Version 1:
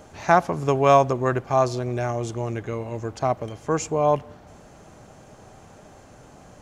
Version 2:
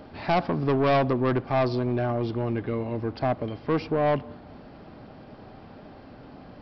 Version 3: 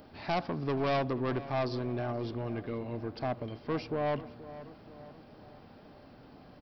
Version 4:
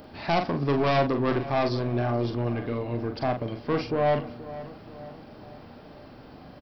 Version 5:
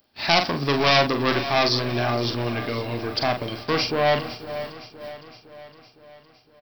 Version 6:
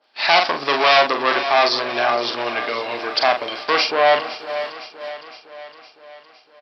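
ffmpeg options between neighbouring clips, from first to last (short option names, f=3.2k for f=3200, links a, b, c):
-af "equalizer=f=260:w=1.9:g=7.5,aresample=11025,asoftclip=type=tanh:threshold=-17.5dB,aresample=44100"
-filter_complex "[0:a]aemphasis=mode=production:type=50fm,asplit=2[a][b];[b]adelay=479,lowpass=f=2.4k:p=1,volume=-15dB,asplit=2[c][d];[d]adelay=479,lowpass=f=2.4k:p=1,volume=0.53,asplit=2[e][f];[f]adelay=479,lowpass=f=2.4k:p=1,volume=0.53,asplit=2[g][h];[h]adelay=479,lowpass=f=2.4k:p=1,volume=0.53,asplit=2[i][j];[j]adelay=479,lowpass=f=2.4k:p=1,volume=0.53[k];[a][c][e][g][i][k]amix=inputs=6:normalize=0,volume=-8dB"
-filter_complex "[0:a]asplit=2[a][b];[b]adelay=42,volume=-6.5dB[c];[a][c]amix=inputs=2:normalize=0,volume=6.5dB"
-af "agate=range=-25dB:threshold=-39dB:ratio=16:detection=peak,crystalizer=i=10:c=0,aecho=1:1:511|1022|1533|2044|2555|3066:0.178|0.101|0.0578|0.0329|0.0188|0.0107"
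-af "apsyclip=12dB,highpass=630,lowpass=4.6k,adynamicequalizer=threshold=0.0794:dfrequency=1500:dqfactor=0.7:tfrequency=1500:tqfactor=0.7:attack=5:release=100:ratio=0.375:range=2:mode=cutabove:tftype=highshelf,volume=-3dB"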